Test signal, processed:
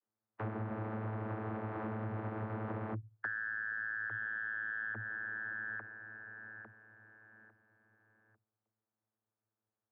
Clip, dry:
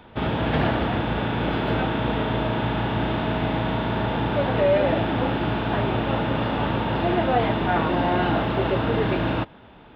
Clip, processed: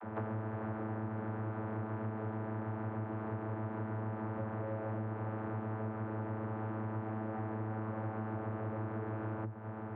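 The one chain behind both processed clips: spectral contrast reduction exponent 0.5; valve stage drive 34 dB, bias 0.5; vocoder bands 32, saw 109 Hz; low-pass 1.6 kHz 24 dB/octave; compression 8:1, threshold -46 dBFS; trim +10.5 dB

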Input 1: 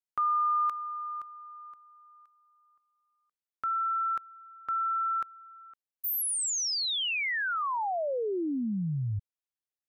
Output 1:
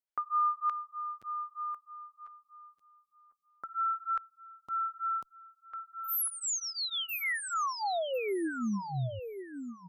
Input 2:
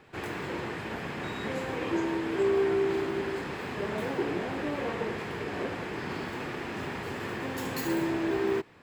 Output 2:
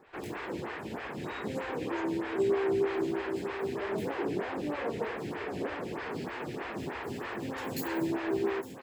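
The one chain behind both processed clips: feedback delay 1049 ms, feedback 18%, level -9 dB; lamp-driven phase shifter 3.2 Hz

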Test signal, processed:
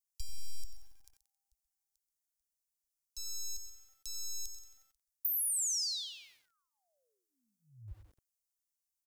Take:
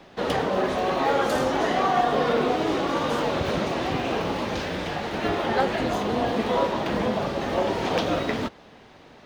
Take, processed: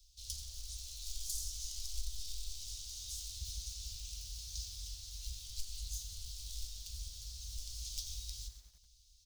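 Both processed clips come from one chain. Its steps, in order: one-sided wavefolder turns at -18 dBFS; inverse Chebyshev band-stop 170–1800 Hz, stop band 60 dB; dynamic bell 2.1 kHz, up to -4 dB, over -51 dBFS, Q 0.87; compression 16:1, threshold -34 dBFS; on a send: delay 130 ms -15 dB; on the sum: bit-crushed delay 90 ms, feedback 55%, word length 10-bit, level -11.5 dB; trim +2 dB

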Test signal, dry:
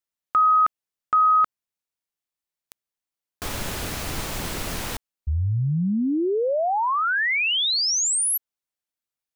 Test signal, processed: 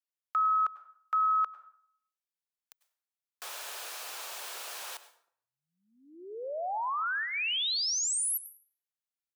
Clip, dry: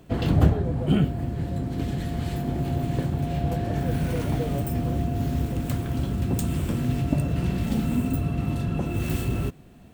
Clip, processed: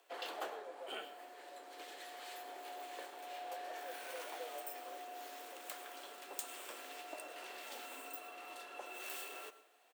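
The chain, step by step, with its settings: Bessel high-pass 740 Hz, order 6; dynamic bell 2 kHz, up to -7 dB, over -49 dBFS, Q 6.7; delay 104 ms -22 dB; frequency shift +22 Hz; plate-style reverb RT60 0.59 s, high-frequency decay 0.7×, pre-delay 85 ms, DRR 14.5 dB; trim -8 dB

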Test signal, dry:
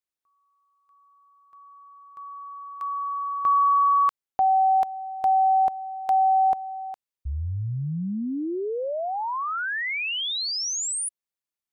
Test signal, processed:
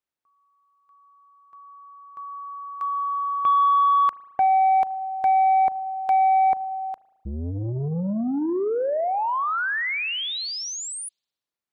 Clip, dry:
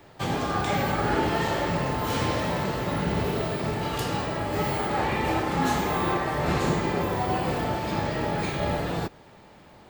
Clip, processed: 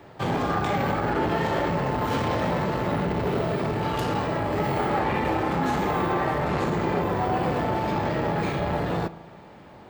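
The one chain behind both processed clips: high-pass 61 Hz 6 dB/octave; treble shelf 3.4 kHz -11 dB; peak limiter -19 dBFS; spring tank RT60 1.2 s, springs 36 ms, chirp 30 ms, DRR 17.5 dB; transformer saturation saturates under 420 Hz; trim +5 dB

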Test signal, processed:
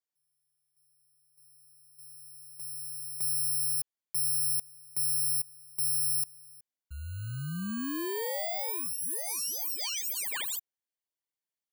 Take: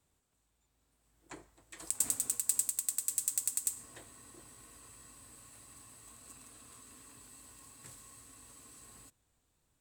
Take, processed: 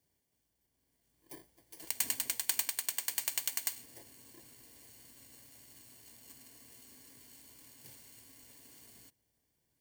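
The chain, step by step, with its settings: bit-reversed sample order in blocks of 32 samples; comb of notches 1.3 kHz

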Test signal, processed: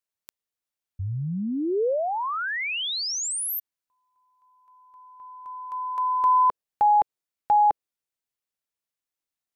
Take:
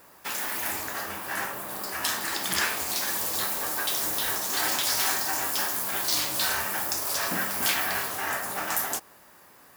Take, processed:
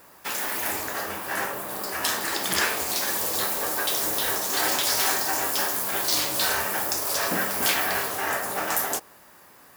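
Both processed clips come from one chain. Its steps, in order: dynamic bell 470 Hz, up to +6 dB, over -45 dBFS, Q 1.4; trim +2 dB

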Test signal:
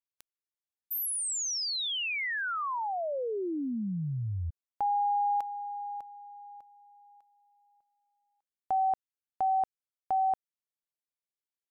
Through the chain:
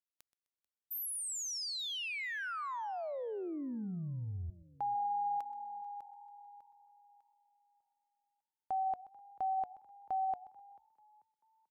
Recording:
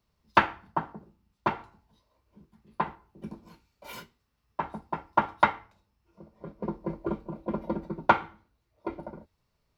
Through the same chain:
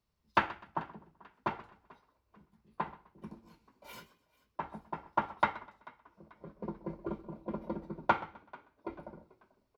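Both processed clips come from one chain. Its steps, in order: frequency-shifting echo 439 ms, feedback 38%, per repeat +41 Hz, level -23 dB; modulated delay 127 ms, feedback 31%, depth 96 cents, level -18.5 dB; trim -7 dB

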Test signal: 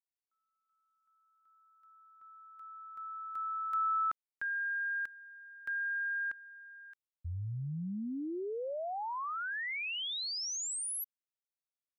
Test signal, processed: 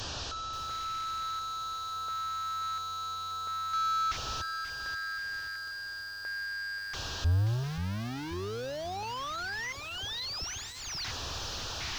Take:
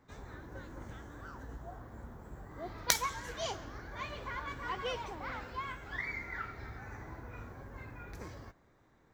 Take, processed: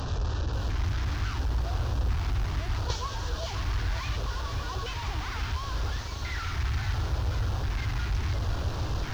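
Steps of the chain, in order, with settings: one-bit delta coder 32 kbps, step -30 dBFS; resonant low shelf 130 Hz +10.5 dB, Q 1.5; LFO notch square 0.72 Hz 520–2100 Hz; bit-crushed delay 532 ms, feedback 55%, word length 8-bit, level -9 dB

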